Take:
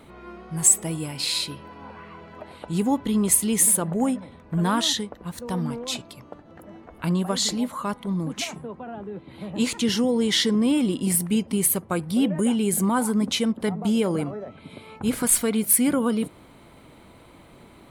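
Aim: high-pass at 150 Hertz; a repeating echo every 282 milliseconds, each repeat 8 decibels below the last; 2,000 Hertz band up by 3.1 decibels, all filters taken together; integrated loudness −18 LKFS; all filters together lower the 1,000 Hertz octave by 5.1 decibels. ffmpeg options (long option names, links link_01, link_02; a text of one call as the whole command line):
ffmpeg -i in.wav -af "highpass=150,equalizer=frequency=1000:width_type=o:gain=-8,equalizer=frequency=2000:width_type=o:gain=6,aecho=1:1:282|564|846|1128|1410:0.398|0.159|0.0637|0.0255|0.0102,volume=4.5dB" out.wav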